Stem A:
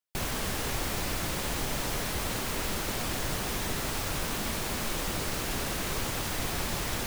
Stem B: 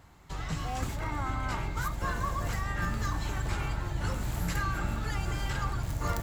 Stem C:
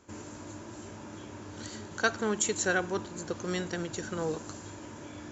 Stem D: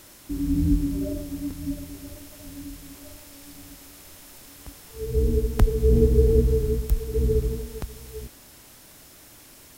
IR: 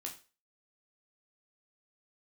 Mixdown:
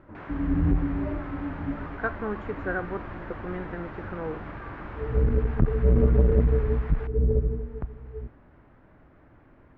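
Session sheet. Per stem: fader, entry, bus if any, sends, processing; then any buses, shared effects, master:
-5.0 dB, 0.00 s, no send, tilt EQ +3 dB/octave
-10.5 dB, 0.00 s, no send, none
-1.0 dB, 0.00 s, no send, none
-5.0 dB, 0.00 s, send -7.5 dB, bass shelf 220 Hz +5 dB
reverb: on, RT60 0.35 s, pre-delay 12 ms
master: low-pass 1.7 kHz 24 dB/octave; transformer saturation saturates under 170 Hz

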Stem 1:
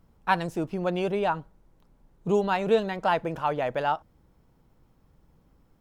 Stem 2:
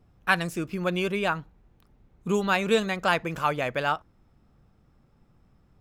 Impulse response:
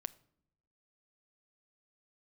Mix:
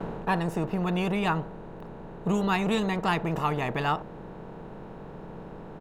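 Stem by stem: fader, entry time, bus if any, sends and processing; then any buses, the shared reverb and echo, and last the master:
-2.0 dB, 0.00 s, no send, spectral levelling over time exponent 0.4; gate with hold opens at -30 dBFS; tilt EQ -3 dB/octave; auto duck -9 dB, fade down 0.40 s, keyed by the second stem
-12.0 dB, 0.6 ms, no send, level rider gain up to 13.5 dB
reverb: none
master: none

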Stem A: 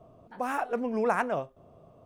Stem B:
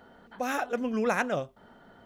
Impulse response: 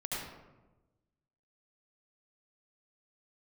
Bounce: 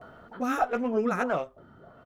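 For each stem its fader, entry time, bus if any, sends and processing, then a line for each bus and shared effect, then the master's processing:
+0.5 dB, 0.00 s, no send, LFO low-pass sine 1.6 Hz 230–2700 Hz; sliding maximum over 3 samples
+2.0 dB, 14 ms, polarity flipped, no send, peaking EQ 1.3 kHz +13.5 dB 0.25 oct; auto duck -9 dB, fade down 0.80 s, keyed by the first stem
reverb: none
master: none

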